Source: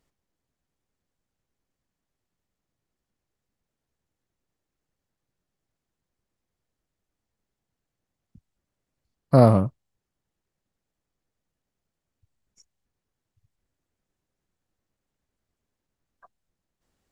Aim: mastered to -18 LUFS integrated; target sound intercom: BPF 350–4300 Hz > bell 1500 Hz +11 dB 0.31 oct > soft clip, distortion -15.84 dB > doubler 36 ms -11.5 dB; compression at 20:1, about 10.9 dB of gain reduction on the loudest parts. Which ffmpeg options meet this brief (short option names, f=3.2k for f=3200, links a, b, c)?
-filter_complex "[0:a]acompressor=threshold=-19dB:ratio=20,highpass=350,lowpass=4.3k,equalizer=f=1.5k:t=o:w=0.31:g=11,asoftclip=threshold=-19.5dB,asplit=2[a][b];[b]adelay=36,volume=-11.5dB[c];[a][c]amix=inputs=2:normalize=0,volume=15.5dB"